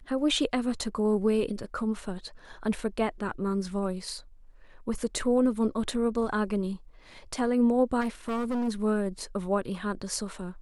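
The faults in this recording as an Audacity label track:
8.000000	8.690000	clipped -26.5 dBFS

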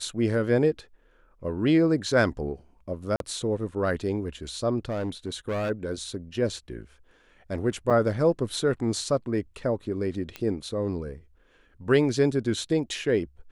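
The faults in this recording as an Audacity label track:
3.160000	3.200000	dropout 42 ms
4.850000	5.710000	clipped -25 dBFS
7.900000	7.910000	dropout 6.2 ms
10.360000	10.360000	pop -19 dBFS

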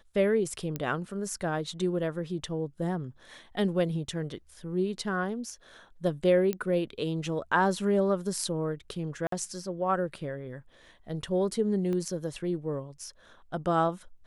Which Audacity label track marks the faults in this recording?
0.760000	0.760000	pop -18 dBFS
6.530000	6.530000	pop -17 dBFS
9.270000	9.320000	dropout 53 ms
11.930000	11.930000	pop -23 dBFS

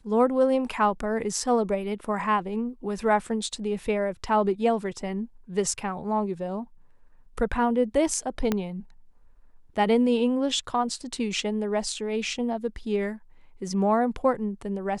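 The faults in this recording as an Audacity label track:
8.520000	8.520000	pop -11 dBFS

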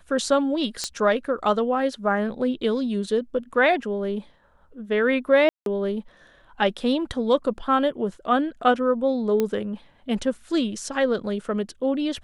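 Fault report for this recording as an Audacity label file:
0.840000	0.840000	pop -12 dBFS
5.490000	5.660000	dropout 172 ms
9.400000	9.400000	pop -11 dBFS

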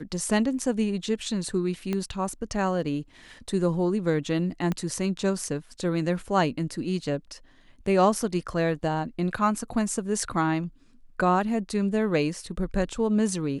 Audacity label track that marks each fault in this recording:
1.930000	1.930000	pop -16 dBFS
4.720000	4.720000	pop -16 dBFS

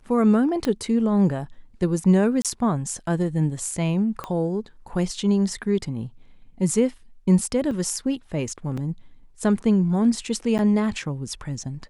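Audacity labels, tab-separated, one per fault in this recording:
0.650000	0.650000	pop -13 dBFS
2.420000	2.450000	dropout 27 ms
4.240000	4.240000	pop -17 dBFS
7.710000	7.710000	dropout 2.5 ms
8.770000	8.780000	dropout 5.3 ms
10.580000	10.590000	dropout 9.4 ms

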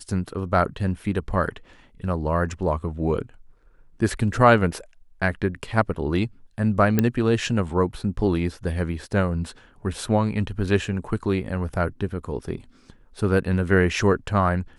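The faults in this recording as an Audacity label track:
6.990000	6.990000	pop -6 dBFS

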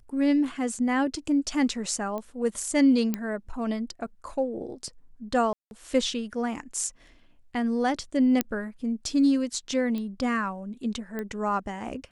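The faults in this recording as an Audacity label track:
2.180000	2.180000	pop -22 dBFS
3.140000	3.140000	pop -14 dBFS
5.530000	5.710000	dropout 181 ms
8.410000	8.410000	pop -8 dBFS
9.980000	9.980000	pop -22 dBFS
11.190000	11.190000	pop -20 dBFS

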